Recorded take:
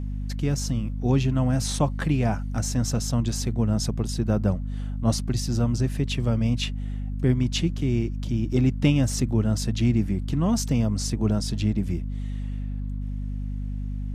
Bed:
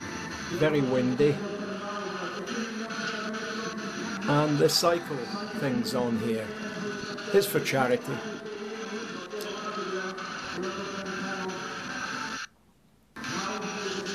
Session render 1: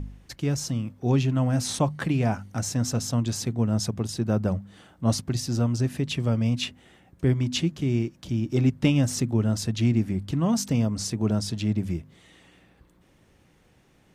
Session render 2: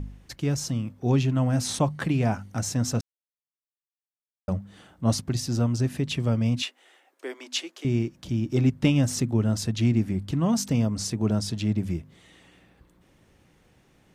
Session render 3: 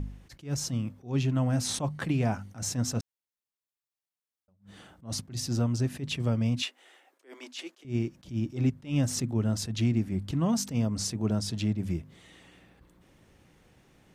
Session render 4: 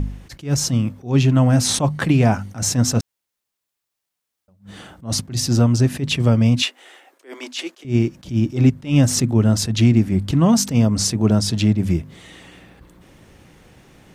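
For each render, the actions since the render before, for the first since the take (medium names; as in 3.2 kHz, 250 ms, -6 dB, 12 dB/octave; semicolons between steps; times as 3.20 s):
de-hum 50 Hz, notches 5
3.01–4.48 s: mute; 6.62–7.85 s: Bessel high-pass 590 Hz, order 8
compression 1.5:1, threshold -28 dBFS, peak gain reduction 5 dB; attacks held to a fixed rise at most 210 dB/s
trim +12 dB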